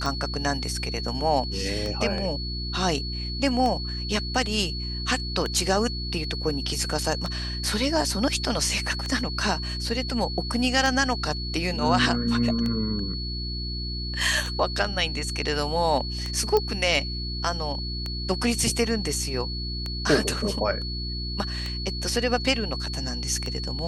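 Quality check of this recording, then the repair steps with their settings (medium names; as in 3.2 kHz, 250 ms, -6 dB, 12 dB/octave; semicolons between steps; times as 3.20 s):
hum 60 Hz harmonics 6 -32 dBFS
tick 33 1/3 rpm
whine 4.4 kHz -33 dBFS
16.57 s: pop -10 dBFS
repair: de-click; band-stop 4.4 kHz, Q 30; de-hum 60 Hz, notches 6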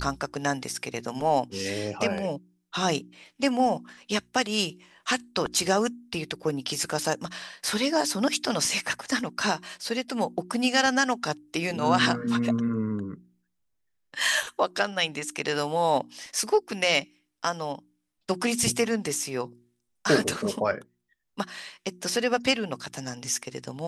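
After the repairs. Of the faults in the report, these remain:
nothing left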